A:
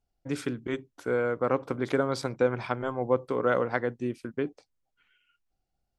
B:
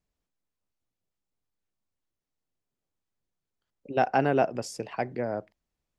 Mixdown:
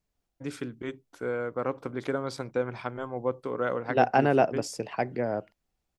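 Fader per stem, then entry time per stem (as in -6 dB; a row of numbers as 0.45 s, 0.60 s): -4.0 dB, +1.5 dB; 0.15 s, 0.00 s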